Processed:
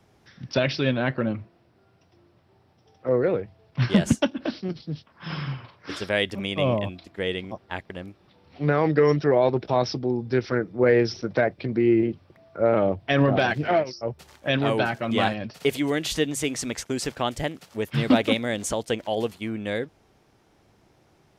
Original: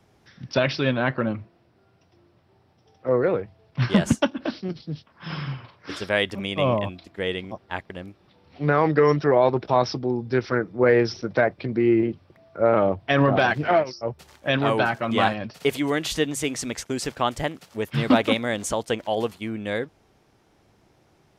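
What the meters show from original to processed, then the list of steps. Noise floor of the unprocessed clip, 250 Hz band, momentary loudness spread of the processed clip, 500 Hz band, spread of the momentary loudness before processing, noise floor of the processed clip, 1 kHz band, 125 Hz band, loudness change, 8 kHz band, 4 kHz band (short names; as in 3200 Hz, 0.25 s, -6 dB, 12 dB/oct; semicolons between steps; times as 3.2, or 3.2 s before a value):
-61 dBFS, 0.0 dB, 14 LU, -1.0 dB, 14 LU, -61 dBFS, -4.0 dB, 0.0 dB, -1.0 dB, 0.0 dB, -0.5 dB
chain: dynamic EQ 1100 Hz, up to -6 dB, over -36 dBFS, Q 1.3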